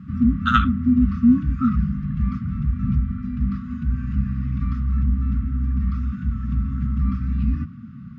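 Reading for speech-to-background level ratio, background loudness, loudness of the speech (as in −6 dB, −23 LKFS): −1.0 dB, −23.0 LKFS, −24.0 LKFS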